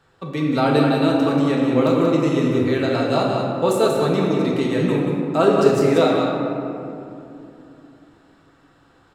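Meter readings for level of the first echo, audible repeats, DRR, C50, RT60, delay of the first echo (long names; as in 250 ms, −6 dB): −6.0 dB, 1, −3.5 dB, −1.0 dB, 2.9 s, 184 ms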